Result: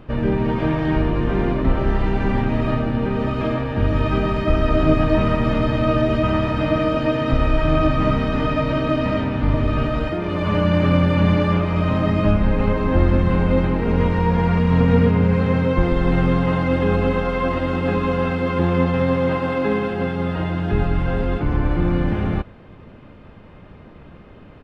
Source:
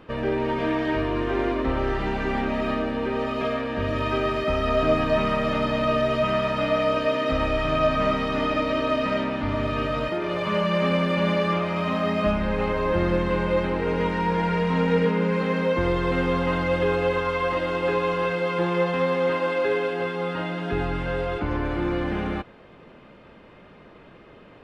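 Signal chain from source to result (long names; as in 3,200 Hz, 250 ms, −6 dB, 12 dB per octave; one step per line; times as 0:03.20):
bass and treble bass +8 dB, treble −2 dB
pitch-shifted copies added −12 semitones −1 dB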